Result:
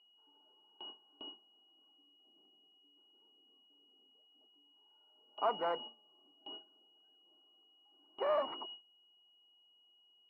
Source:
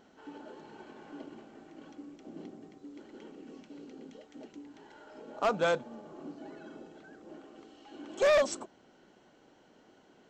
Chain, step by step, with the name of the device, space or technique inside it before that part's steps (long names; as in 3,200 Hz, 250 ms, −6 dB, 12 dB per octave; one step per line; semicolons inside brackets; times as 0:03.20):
toy sound module (linearly interpolated sample-rate reduction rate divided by 8×; switching amplifier with a slow clock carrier 2,900 Hz; loudspeaker in its box 500–4,300 Hz, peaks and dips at 550 Hz −10 dB, 970 Hz +5 dB, 1,700 Hz −9 dB, 3,500 Hz −9 dB)
noise gate with hold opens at −38 dBFS